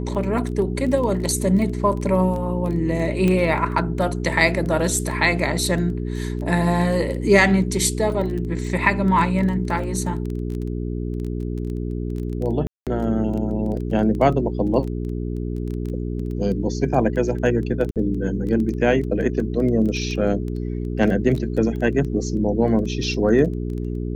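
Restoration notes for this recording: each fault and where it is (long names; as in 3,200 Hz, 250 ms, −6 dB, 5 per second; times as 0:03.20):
surface crackle 12 per second −27 dBFS
mains hum 60 Hz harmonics 7 −26 dBFS
0:03.28: click −10 dBFS
0:12.67–0:12.87: drop-out 197 ms
0:17.91–0:17.96: drop-out 48 ms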